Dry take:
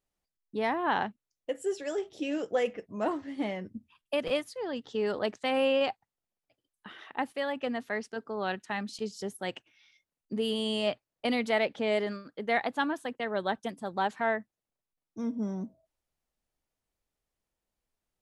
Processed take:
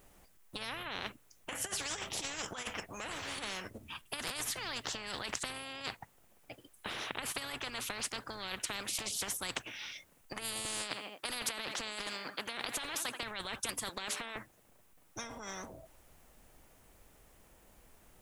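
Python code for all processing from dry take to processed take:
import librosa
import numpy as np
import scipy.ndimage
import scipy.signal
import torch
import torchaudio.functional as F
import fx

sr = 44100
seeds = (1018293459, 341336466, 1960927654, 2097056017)

y = fx.chain(x, sr, fx.highpass(hz=330.0, slope=12),
    fx.echo_feedback(ms=82, feedback_pct=41, wet_db=-23.5), at=(10.65, 13.23))
y = fx.chain(y, sr, fx.highpass(hz=430.0, slope=12),
    fx.hum_notches(base_hz=60, count=10), at=(13.89, 14.36))
y = fx.peak_eq(y, sr, hz=4500.0, db=-7.0, octaves=1.1)
y = fx.over_compress(y, sr, threshold_db=-35.0, ratio=-1.0)
y = fx.spectral_comp(y, sr, ratio=10.0)
y = y * 10.0 ** (3.0 / 20.0)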